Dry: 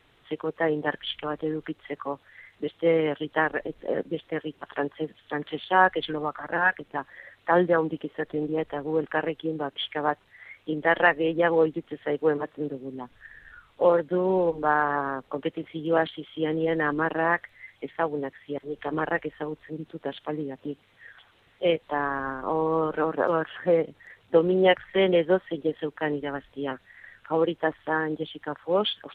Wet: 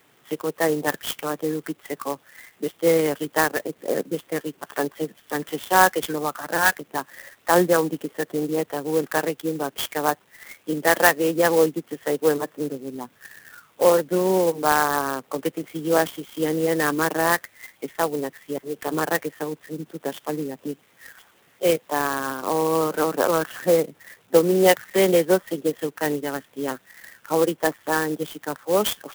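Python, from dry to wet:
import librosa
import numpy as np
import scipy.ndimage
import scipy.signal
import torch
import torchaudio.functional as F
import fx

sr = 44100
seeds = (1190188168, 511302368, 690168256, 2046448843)

y = scipy.signal.sosfilt(scipy.signal.butter(4, 130.0, 'highpass', fs=sr, output='sos'), x)
y = fx.clock_jitter(y, sr, seeds[0], jitter_ms=0.049)
y = y * 10.0 ** (3.5 / 20.0)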